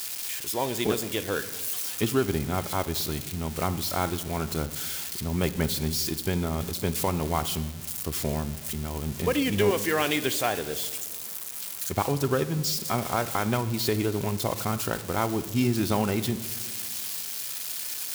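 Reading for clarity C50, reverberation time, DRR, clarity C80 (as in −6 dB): 14.5 dB, 1.5 s, 11.0 dB, 16.0 dB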